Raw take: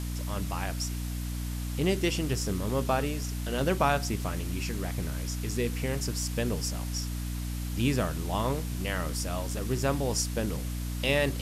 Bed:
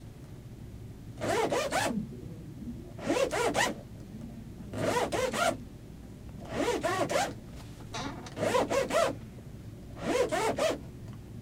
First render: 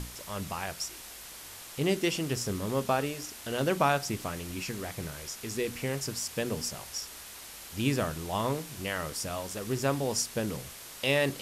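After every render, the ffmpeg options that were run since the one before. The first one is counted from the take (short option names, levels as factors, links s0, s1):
-af "bandreject=f=60:t=h:w=6,bandreject=f=120:t=h:w=6,bandreject=f=180:t=h:w=6,bandreject=f=240:t=h:w=6,bandreject=f=300:t=h:w=6"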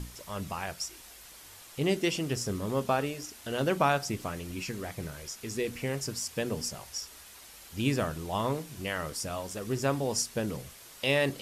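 -af "afftdn=nr=6:nf=-46"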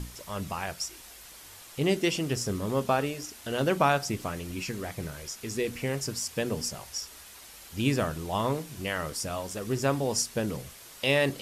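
-af "volume=1.26"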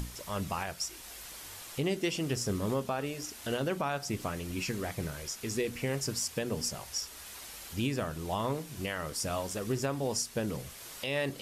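-af "acompressor=mode=upward:threshold=0.01:ratio=2.5,alimiter=limit=0.0841:level=0:latency=1:release=326"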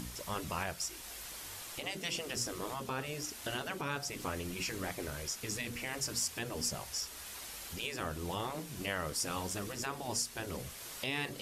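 -af "afftfilt=real='re*lt(hypot(re,im),0.1)':imag='im*lt(hypot(re,im),0.1)':win_size=1024:overlap=0.75"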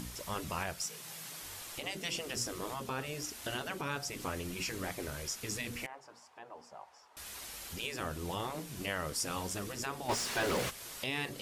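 -filter_complex "[0:a]asettb=1/sr,asplit=3[s0][s1][s2];[s0]atrim=end=0.834[s3];[s1]atrim=start=0.83:end=1.4,asetpts=PTS-STARTPTS,afade=t=in:d=0.004:c=qsin,afade=t=out:st=0.566:d=0.004:c=qsin,afreqshift=110[s4];[s2]atrim=start=1.396[s5];[s3][s4]acrossfade=d=0.004:c1=hsin:c2=qsin[s6];[s6][s5]acrossfade=d=0.004:c1=qsin:c2=hsin,asettb=1/sr,asplit=3[s7][s8][s9];[s7]atrim=end=5.864[s10];[s8]atrim=start=5.86:end=7.17,asetpts=PTS-STARTPTS,afade=t=in:d=0.004:c=qsin,afade=t=out:st=1.306:d=0.004:c=qsin,bandpass=f=860:t=q:w=2.8[s11];[s9]atrim=start=7.166[s12];[s10][s11]acrossfade=d=0.004:c1=hsin:c2=qsin[s13];[s13][s12]acrossfade=d=0.004:c1=qsin:c2=hsin,asplit=3[s14][s15][s16];[s14]afade=t=out:st=10.08:d=0.02[s17];[s15]asplit=2[s18][s19];[s19]highpass=f=720:p=1,volume=35.5,asoftclip=type=tanh:threshold=0.075[s20];[s18][s20]amix=inputs=2:normalize=0,lowpass=f=2400:p=1,volume=0.501,afade=t=in:st=10.08:d=0.02,afade=t=out:st=10.69:d=0.02[s21];[s16]afade=t=in:st=10.69:d=0.02[s22];[s17][s21][s22]amix=inputs=3:normalize=0"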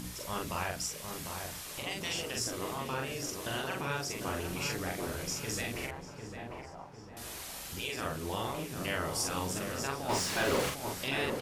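-filter_complex "[0:a]asplit=2[s0][s1];[s1]adelay=44,volume=0.794[s2];[s0][s2]amix=inputs=2:normalize=0,asplit=2[s3][s4];[s4]adelay=750,lowpass=f=1200:p=1,volume=0.562,asplit=2[s5][s6];[s6]adelay=750,lowpass=f=1200:p=1,volume=0.53,asplit=2[s7][s8];[s8]adelay=750,lowpass=f=1200:p=1,volume=0.53,asplit=2[s9][s10];[s10]adelay=750,lowpass=f=1200:p=1,volume=0.53,asplit=2[s11][s12];[s12]adelay=750,lowpass=f=1200:p=1,volume=0.53,asplit=2[s13][s14];[s14]adelay=750,lowpass=f=1200:p=1,volume=0.53,asplit=2[s15][s16];[s16]adelay=750,lowpass=f=1200:p=1,volume=0.53[s17];[s5][s7][s9][s11][s13][s15][s17]amix=inputs=7:normalize=0[s18];[s3][s18]amix=inputs=2:normalize=0"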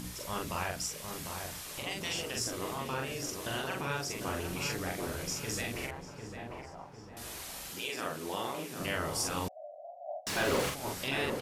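-filter_complex "[0:a]asettb=1/sr,asplit=3[s0][s1][s2];[s0]atrim=end=7.704[s3];[s1]atrim=start=7.7:end=8.8,asetpts=PTS-STARTPTS,afade=t=in:d=0.004:c=qsin,afade=t=out:st=1.096:d=0.004:c=qsin,highpass=200[s4];[s2]atrim=start=8.796[s5];[s3][s4]acrossfade=d=0.004:c1=hsin:c2=qsin[s6];[s6][s5]acrossfade=d=0.004:c1=qsin:c2=hsin,asettb=1/sr,asplit=3[s7][s8][s9];[s7]atrim=end=9.484[s10];[s8]atrim=start=9.48:end=10.27,asetpts=PTS-STARTPTS,afade=t=in:d=0.004:c=qsin,afade=t=out:st=0.786:d=0.004:c=qsin,asuperpass=centerf=660:order=8:qfactor=3.9[s11];[s9]atrim=start=10.266[s12];[s10][s11]acrossfade=d=0.004:c1=hsin:c2=qsin[s13];[s13][s12]acrossfade=d=0.004:c1=qsin:c2=hsin"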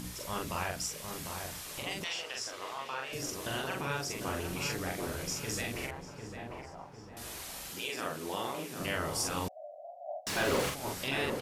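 -filter_complex "[0:a]asettb=1/sr,asplit=3[s0][s1][s2];[s0]atrim=end=2.044[s3];[s1]atrim=start=2.04:end=3.13,asetpts=PTS-STARTPTS,afade=t=in:d=0.004:c=qsin,afade=t=out:st=1.086:d=0.004:c=qsin,acrossover=split=530 6300:gain=0.126 1 0.224[s4][s5][s6];[s4][s5][s6]amix=inputs=3:normalize=0[s7];[s2]atrim=start=3.126[s8];[s3][s7]acrossfade=d=0.004:c1=hsin:c2=qsin[s9];[s9][s8]acrossfade=d=0.004:c1=qsin:c2=hsin"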